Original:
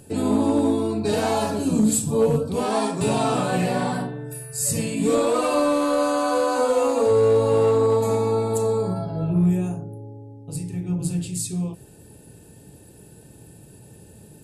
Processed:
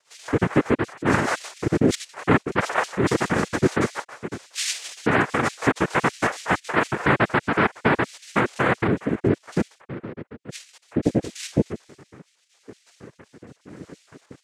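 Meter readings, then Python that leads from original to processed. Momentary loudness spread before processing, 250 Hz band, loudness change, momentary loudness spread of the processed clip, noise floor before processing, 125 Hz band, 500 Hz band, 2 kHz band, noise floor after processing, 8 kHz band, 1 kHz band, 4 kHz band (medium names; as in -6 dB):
12 LU, -1.5 dB, -1.5 dB, 15 LU, -48 dBFS, -1.5 dB, -5.5 dB, +11.0 dB, -65 dBFS, -6.0 dB, +0.5 dB, +1.5 dB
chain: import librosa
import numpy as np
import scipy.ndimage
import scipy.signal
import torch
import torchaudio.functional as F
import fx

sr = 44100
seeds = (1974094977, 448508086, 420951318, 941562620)

y = fx.spec_dropout(x, sr, seeds[0], share_pct=68)
y = fx.rotary_switch(y, sr, hz=6.7, then_hz=0.9, switch_at_s=6.6)
y = fx.rider(y, sr, range_db=3, speed_s=0.5)
y = fx.peak_eq(y, sr, hz=1600.0, db=-2.5, octaves=0.77)
y = fx.noise_vocoder(y, sr, seeds[1], bands=3)
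y = y * 10.0 ** (5.0 / 20.0)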